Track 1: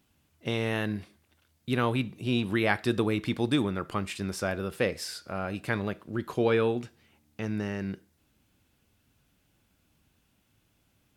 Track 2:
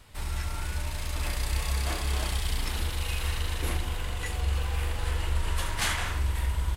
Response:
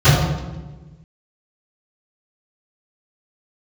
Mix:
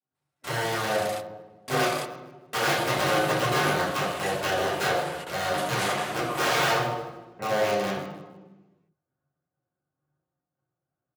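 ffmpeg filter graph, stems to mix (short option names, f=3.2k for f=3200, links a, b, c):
-filter_complex "[0:a]lowpass=f=1.5k:w=0.5412,lowpass=f=1.5k:w=1.3066,agate=range=-33dB:threshold=-57dB:ratio=3:detection=peak,aeval=exprs='(mod(17.8*val(0)+1,2)-1)/17.8':c=same,volume=-2dB,asplit=3[a][b][c];[a]atrim=end=1.85,asetpts=PTS-STARTPTS,afade=t=out:st=1.846:d=0.004:c=hsin[d];[b]atrim=start=1.85:end=2.53,asetpts=PTS-STARTPTS,volume=0[e];[c]atrim=start=2.53,asetpts=PTS-STARTPTS,afade=t=in:d=0.004:c=hsin[f];[d][e][f]concat=n=3:v=0:a=1,asplit=4[g][h][i][j];[h]volume=-16dB[k];[i]volume=-11dB[l];[1:a]alimiter=limit=-22dB:level=0:latency=1:release=189,volume=2dB[m];[j]apad=whole_len=298139[n];[m][n]sidechaingate=range=-48dB:threshold=-59dB:ratio=16:detection=peak[o];[2:a]atrim=start_sample=2205[p];[k][p]afir=irnorm=-1:irlink=0[q];[l]aecho=0:1:154|308|462|616:1|0.29|0.0841|0.0244[r];[g][o][q][r]amix=inputs=4:normalize=0,highpass=440"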